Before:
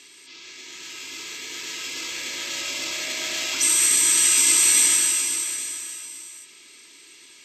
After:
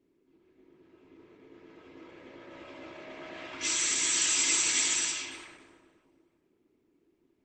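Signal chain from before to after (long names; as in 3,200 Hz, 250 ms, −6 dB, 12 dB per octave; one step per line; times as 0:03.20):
low-pass that shuts in the quiet parts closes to 320 Hz, open at −15 dBFS
level −4 dB
Opus 16 kbit/s 48,000 Hz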